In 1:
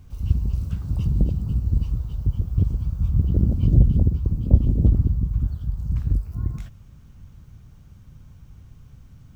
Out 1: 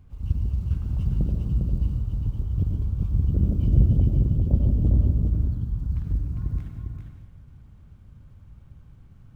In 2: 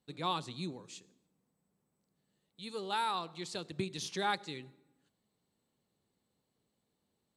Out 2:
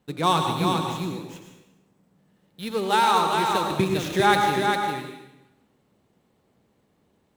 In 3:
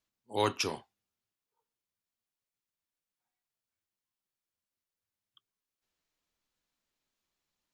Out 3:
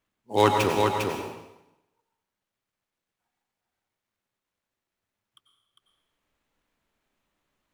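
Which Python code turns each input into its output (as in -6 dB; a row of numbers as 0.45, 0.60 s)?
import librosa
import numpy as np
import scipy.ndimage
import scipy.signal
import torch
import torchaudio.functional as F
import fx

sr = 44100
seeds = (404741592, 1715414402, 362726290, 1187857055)

y = scipy.ndimage.median_filter(x, 9, mode='constant')
y = y + 10.0 ** (-4.5 / 20.0) * np.pad(y, (int(402 * sr / 1000.0), 0))[:len(y)]
y = fx.rev_plate(y, sr, seeds[0], rt60_s=0.91, hf_ratio=0.95, predelay_ms=80, drr_db=4.0)
y = y * 10.0 ** (-6 / 20.0) / np.max(np.abs(y))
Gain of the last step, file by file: -5.0, +14.0, +9.5 dB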